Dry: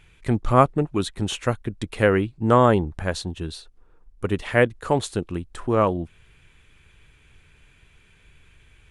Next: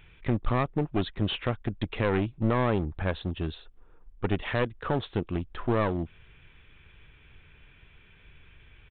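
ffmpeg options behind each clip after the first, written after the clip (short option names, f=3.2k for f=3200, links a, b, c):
-af "alimiter=limit=-13.5dB:level=0:latency=1:release=256,aresample=8000,aeval=exprs='clip(val(0),-1,0.0398)':c=same,aresample=44100"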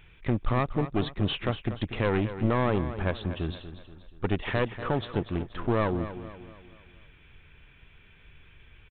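-af "aecho=1:1:239|478|717|956|1195:0.251|0.113|0.0509|0.0229|0.0103"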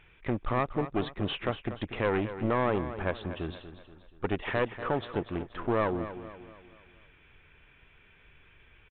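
-af "bass=f=250:g=-7,treble=f=4k:g=-12"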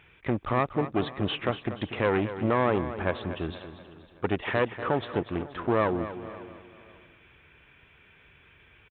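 -af "highpass=66,aecho=1:1:548|1096:0.0944|0.0245,volume=3dB"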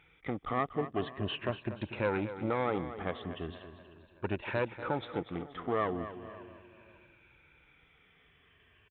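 -af "afftfilt=real='re*pow(10,9/40*sin(2*PI*(1.4*log(max(b,1)*sr/1024/100)/log(2)-(-0.39)*(pts-256)/sr)))':imag='im*pow(10,9/40*sin(2*PI*(1.4*log(max(b,1)*sr/1024/100)/log(2)-(-0.39)*(pts-256)/sr)))':win_size=1024:overlap=0.75,volume=-7.5dB"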